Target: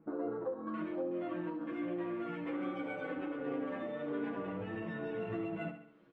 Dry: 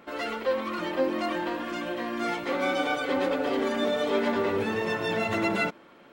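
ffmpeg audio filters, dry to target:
-filter_complex "[0:a]asetnsamples=n=441:p=0,asendcmd='0.67 lowpass f 4600',lowpass=1200,afwtdn=0.0178,lowshelf=f=500:g=11,aecho=1:1:6.2:0.76,acompressor=threshold=0.02:ratio=10,aecho=1:1:68|136|204|272|340|408:0.316|0.161|0.0823|0.0419|0.0214|0.0109,asplit=2[s0][s1];[s1]adelay=10.4,afreqshift=-1.2[s2];[s0][s2]amix=inputs=2:normalize=1"

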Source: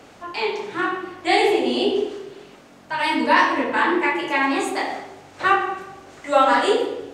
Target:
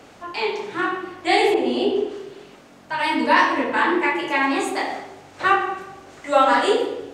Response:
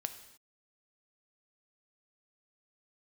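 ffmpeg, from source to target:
-filter_complex "[0:a]asettb=1/sr,asplit=3[s0][s1][s2];[s0]atrim=end=1.544[s3];[s1]atrim=start=1.54:end=3.19,asetpts=PTS-STARTPTS,afade=t=in:d=0.004:c=qsin,afade=t=out:st=1.646:d=0.004:c=qsin,adynamicequalizer=threshold=0.0141:dfrequency=2400:dqfactor=0.7:tfrequency=2400:tqfactor=0.7:attack=5:release=100:ratio=0.375:range=3:mode=cutabove:tftype=highshelf[s4];[s2]atrim=start=3.186[s5];[s3][s4]acrossfade=d=0.004:c1=hsin:c2=qsin[s6];[s6][s5]acrossfade=d=0.004:c1=qsin:c2=hsin"

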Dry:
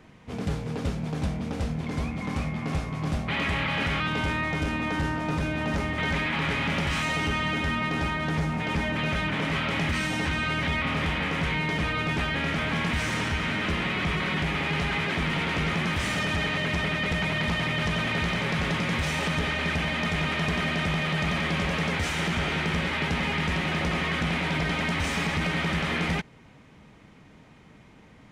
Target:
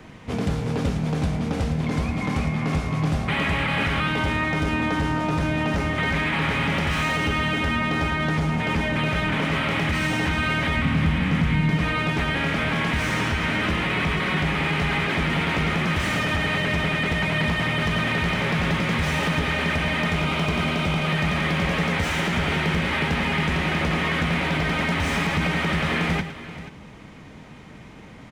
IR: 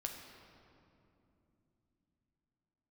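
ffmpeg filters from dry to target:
-filter_complex "[0:a]asettb=1/sr,asplit=3[s0][s1][s2];[s0]atrim=end=10.774[s3];[s1]atrim=start=10.77:end=11.77,asetpts=PTS-STARTPTS,afade=t=in:d=0.004:c=qsin,afade=t=out:st=0.996:d=0.004:c=qsin,lowshelf=f=290:t=q:w=1.5:g=8[s4];[s2]atrim=start=11.766[s5];[s3][s4]acrossfade=d=0.004:c1=hsin:c2=qsin[s6];[s6][s5]acrossfade=d=0.004:c1=qsin:c2=hsin,asettb=1/sr,asplit=3[s7][s8][s9];[s7]atrim=end=20.144[s10];[s8]atrim=start=20.14:end=21.08,asetpts=PTS-STARTPTS,afade=t=in:d=0.004:c=qsin,afade=t=out:st=0.936:d=0.004:c=qsin,bandreject=f=1800:w=5.3[s11];[s9]atrim=start=21.076[s12];[s10][s11]acrossfade=d=0.004:c1=hsin:c2=qsin[s13];[s13][s12]acrossfade=d=0.004:c1=qsin:c2=hsin,acrossover=split=270|2800[s14][s15][s16];[s16]asoftclip=type=tanh:threshold=0.0133[s17];[s14][s15][s17]amix=inputs=3:normalize=0,acompressor=threshold=0.0282:ratio=2.5,aecho=1:1:110|482:0.282|0.178,volume=2.66"

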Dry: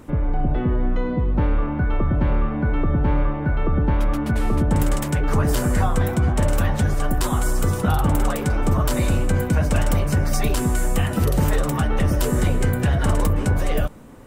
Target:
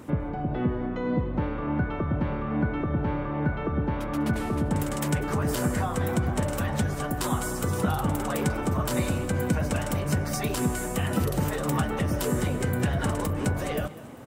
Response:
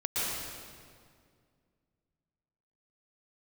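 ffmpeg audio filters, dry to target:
-filter_complex "[0:a]acompressor=threshold=0.1:ratio=6,highpass=90,asplit=2[s0][s1];[s1]asplit=4[s2][s3][s4][s5];[s2]adelay=198,afreqshift=34,volume=0.141[s6];[s3]adelay=396,afreqshift=68,volume=0.0676[s7];[s4]adelay=594,afreqshift=102,volume=0.0324[s8];[s5]adelay=792,afreqshift=136,volume=0.0157[s9];[s6][s7][s8][s9]amix=inputs=4:normalize=0[s10];[s0][s10]amix=inputs=2:normalize=0"

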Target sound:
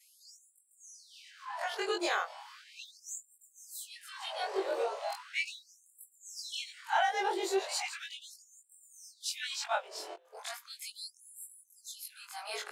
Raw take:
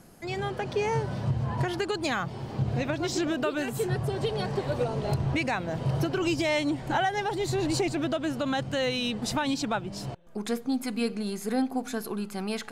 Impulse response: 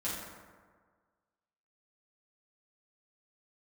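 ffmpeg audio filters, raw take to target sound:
-af "afftfilt=real='re':imag='-im':win_size=2048:overlap=0.75,afftfilt=real='re*gte(b*sr/1024,330*pow(7400/330,0.5+0.5*sin(2*PI*0.37*pts/sr)))':imag='im*gte(b*sr/1024,330*pow(7400/330,0.5+0.5*sin(2*PI*0.37*pts/sr)))':win_size=1024:overlap=0.75,volume=1.33"

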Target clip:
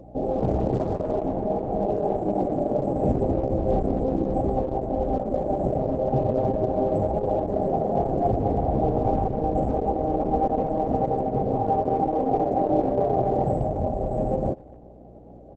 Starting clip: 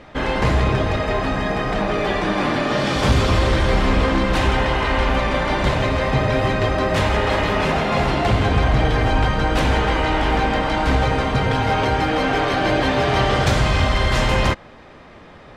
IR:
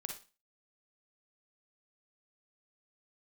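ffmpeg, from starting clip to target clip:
-filter_complex "[0:a]asetnsamples=n=441:p=0,asendcmd='10.69 equalizer g -10',equalizer=f=62:t=o:w=0.7:g=-3.5,aeval=exprs='val(0)+0.00891*(sin(2*PI*60*n/s)+sin(2*PI*2*60*n/s)/2+sin(2*PI*3*60*n/s)/3+sin(2*PI*4*60*n/s)/4+sin(2*PI*5*60*n/s)/5)':c=same,afftfilt=real='re*(1-between(b*sr/4096,830,8100))':imag='im*(1-between(b*sr/4096,830,8100))':win_size=4096:overlap=0.75,lowshelf=f=140:g=-9,asplit=2[s0][s1];[s1]adelay=250,highpass=300,lowpass=3400,asoftclip=type=hard:threshold=0.119,volume=0.0501[s2];[s0][s2]amix=inputs=2:normalize=0" -ar 48000 -c:a libopus -b:a 10k

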